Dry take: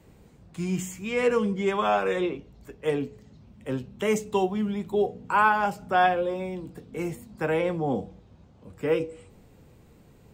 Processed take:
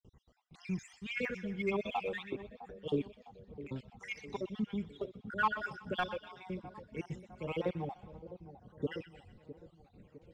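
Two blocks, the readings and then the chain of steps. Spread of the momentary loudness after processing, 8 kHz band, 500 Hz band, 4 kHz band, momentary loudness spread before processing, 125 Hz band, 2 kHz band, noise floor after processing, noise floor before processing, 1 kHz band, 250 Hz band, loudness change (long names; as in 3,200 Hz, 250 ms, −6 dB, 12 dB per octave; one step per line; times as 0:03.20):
18 LU, below −15 dB, −13.5 dB, −8.0 dB, 13 LU, −8.5 dB, −9.5 dB, −68 dBFS, −55 dBFS, −14.0 dB, −10.5 dB, −12.5 dB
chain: time-frequency cells dropped at random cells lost 58%
noise gate with hold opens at −56 dBFS
transistor ladder low-pass 6,700 Hz, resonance 20%
parametric band 2,300 Hz +2.5 dB
soft clipping −19 dBFS, distortion −22 dB
phase shifter 1.7 Hz, delay 1.7 ms, feedback 59%
echo with a time of its own for lows and highs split 970 Hz, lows 657 ms, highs 124 ms, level −14 dB
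level −4 dB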